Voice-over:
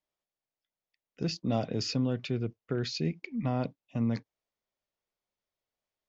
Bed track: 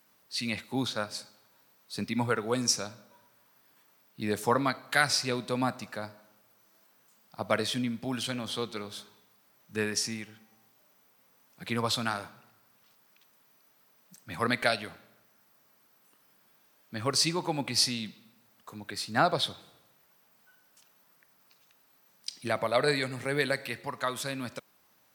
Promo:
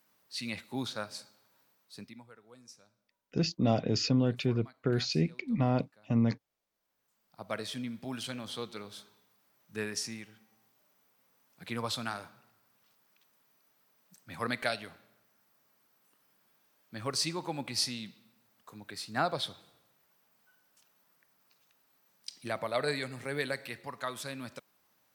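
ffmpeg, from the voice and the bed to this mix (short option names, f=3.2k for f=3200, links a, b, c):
-filter_complex "[0:a]adelay=2150,volume=2.5dB[a];[1:a]volume=16.5dB,afade=t=out:st=1.62:d=0.61:silence=0.0794328,afade=t=in:st=6.68:d=1.35:silence=0.0841395[b];[a][b]amix=inputs=2:normalize=0"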